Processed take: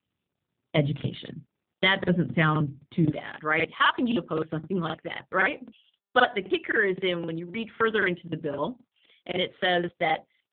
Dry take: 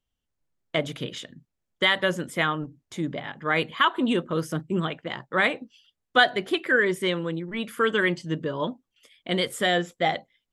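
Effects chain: peaking EQ 100 Hz +12.5 dB 2.4 oct, from 3.05 s -4 dB; crackling interface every 0.26 s, samples 2048, repeat, from 0.95 s; AMR-NB 7.4 kbps 8 kHz

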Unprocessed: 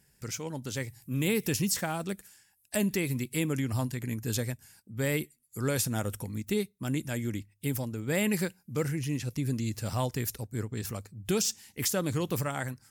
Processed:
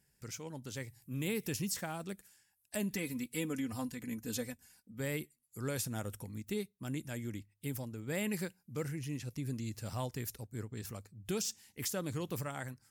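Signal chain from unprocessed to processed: 2.93–5.00 s: comb 4 ms, depth 69%; trim -8 dB

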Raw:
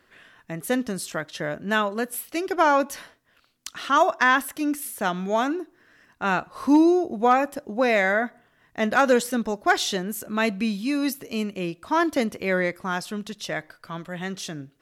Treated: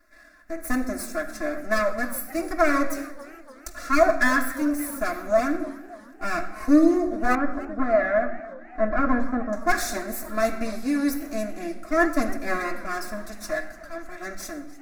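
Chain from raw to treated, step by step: comb filter that takes the minimum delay 3 ms; static phaser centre 620 Hz, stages 8; reverberation RT60 0.95 s, pre-delay 3 ms, DRR 0.5 dB; flange 0.57 Hz, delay 0.7 ms, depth 7.2 ms, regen +89%; 7.35–9.53 s: low-pass 1.5 kHz 12 dB/octave; modulated delay 293 ms, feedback 59%, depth 188 cents, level -19 dB; trim +4.5 dB

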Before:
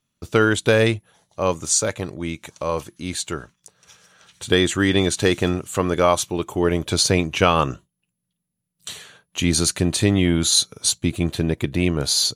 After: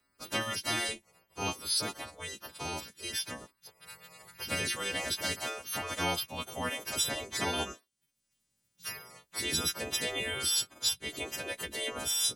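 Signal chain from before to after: partials quantised in pitch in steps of 2 st; spectral gate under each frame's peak -10 dB weak; three bands compressed up and down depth 40%; trim -7 dB

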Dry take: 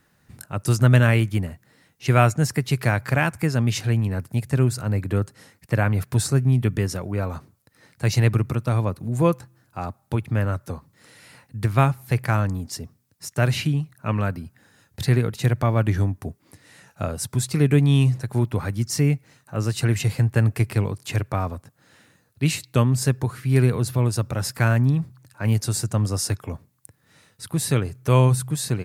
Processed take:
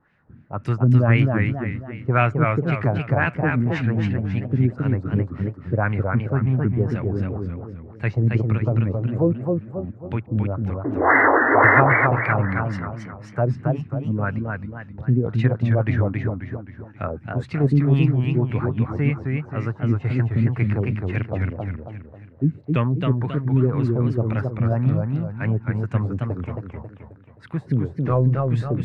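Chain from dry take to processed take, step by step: 28.05–28.47 s: CVSD coder 32 kbps; in parallel at -11.5 dB: hard clipper -14 dBFS, distortion -13 dB; 10.84–11.81 s: on the sum: painted sound noise 250–2100 Hz -14 dBFS; LFO low-pass sine 1.9 Hz 230–2400 Hz; modulated delay 267 ms, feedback 43%, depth 164 cents, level -3.5 dB; trim -4.5 dB

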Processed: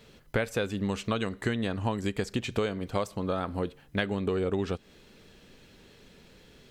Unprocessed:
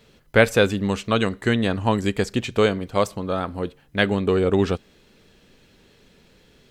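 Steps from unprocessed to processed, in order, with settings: compression 6:1, threshold -26 dBFS, peak gain reduction 15.5 dB

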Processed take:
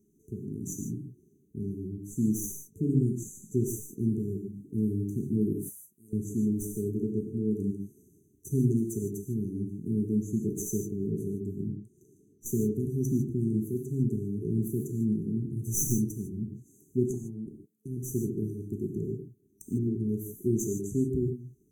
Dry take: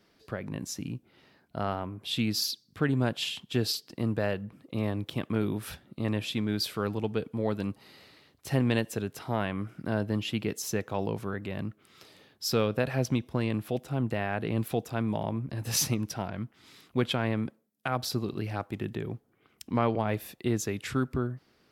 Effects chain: tracing distortion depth 0.037 ms; 5.53–6.13 s: pre-emphasis filter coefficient 0.97; FFT band-reject 440–5900 Hz; 11.55–12.46 s: treble shelf 5.8 kHz -11 dB; 17.05–17.47 s: compression 6:1, threshold -38 dBFS, peak gain reduction 11.5 dB; gated-style reverb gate 180 ms flat, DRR 2.5 dB

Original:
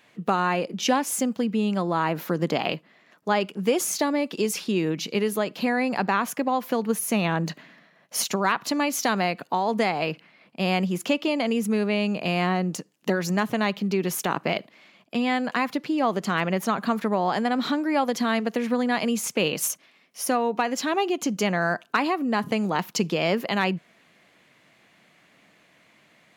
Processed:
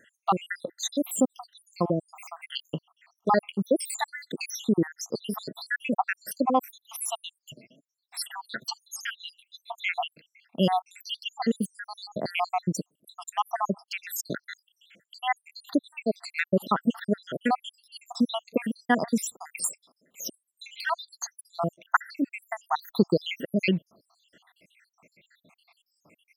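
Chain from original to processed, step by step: random holes in the spectrogram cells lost 83%; 7.18–9.72 s: flange 1.1 Hz, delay 3.4 ms, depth 5.6 ms, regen +9%; trim +4 dB

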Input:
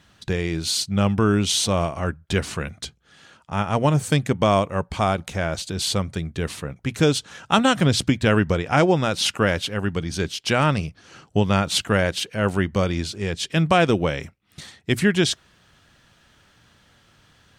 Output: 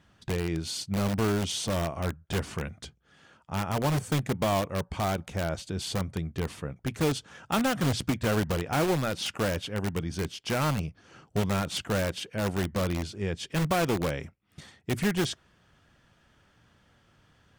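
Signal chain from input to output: treble shelf 2.1 kHz -7.5 dB; band-stop 4 kHz, Q 15; in parallel at -4 dB: integer overflow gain 17 dB; on the sum: trim -8.5 dB

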